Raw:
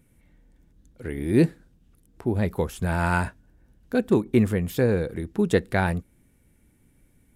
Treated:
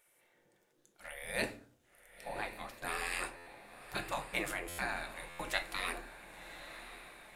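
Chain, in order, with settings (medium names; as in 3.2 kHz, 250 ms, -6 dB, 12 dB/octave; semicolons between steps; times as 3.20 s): spectral gate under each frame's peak -20 dB weak; 2.28–2.82 s: treble shelf 4.1 kHz -9.5 dB; echo that smears into a reverb 1072 ms, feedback 51%, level -12 dB; simulated room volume 310 m³, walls furnished, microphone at 0.89 m; buffer glitch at 3.36/4.68/5.29 s, samples 512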